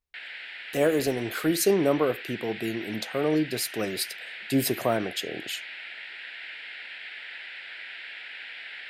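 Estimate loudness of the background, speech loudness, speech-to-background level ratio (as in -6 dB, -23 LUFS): -38.0 LUFS, -27.5 LUFS, 10.5 dB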